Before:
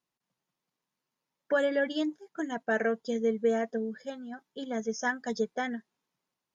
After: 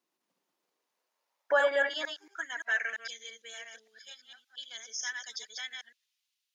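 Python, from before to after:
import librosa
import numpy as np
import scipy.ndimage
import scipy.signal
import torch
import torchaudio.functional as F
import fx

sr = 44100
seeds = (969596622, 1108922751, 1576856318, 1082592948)

y = fx.reverse_delay(x, sr, ms=114, wet_db=-3.5)
y = fx.filter_sweep_highpass(y, sr, from_hz=310.0, to_hz=3100.0, start_s=0.39, end_s=3.26, q=1.6)
y = y * 10.0 ** (2.0 / 20.0)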